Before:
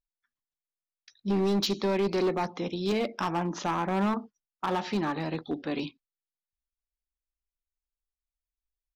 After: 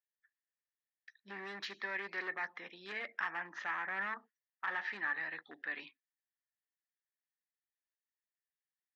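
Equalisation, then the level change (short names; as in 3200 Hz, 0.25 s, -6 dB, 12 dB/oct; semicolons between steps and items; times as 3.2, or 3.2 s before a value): band-pass 1800 Hz, Q 9.3; +9.5 dB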